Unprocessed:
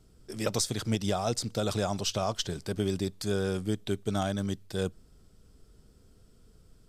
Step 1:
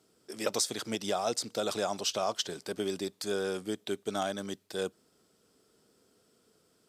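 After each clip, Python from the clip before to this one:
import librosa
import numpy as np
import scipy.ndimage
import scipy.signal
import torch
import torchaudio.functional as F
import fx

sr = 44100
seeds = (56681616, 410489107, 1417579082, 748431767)

y = scipy.signal.sosfilt(scipy.signal.butter(2, 310.0, 'highpass', fs=sr, output='sos'), x)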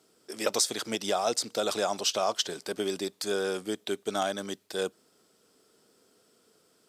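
y = fx.low_shelf(x, sr, hz=150.0, db=-11.5)
y = y * 10.0 ** (4.0 / 20.0)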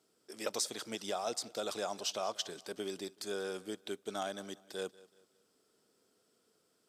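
y = fx.echo_feedback(x, sr, ms=188, feedback_pct=36, wet_db=-20.5)
y = y * 10.0 ** (-9.0 / 20.0)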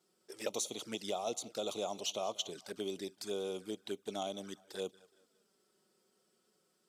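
y = fx.env_flanger(x, sr, rest_ms=5.7, full_db=-36.5)
y = y * 10.0 ** (1.5 / 20.0)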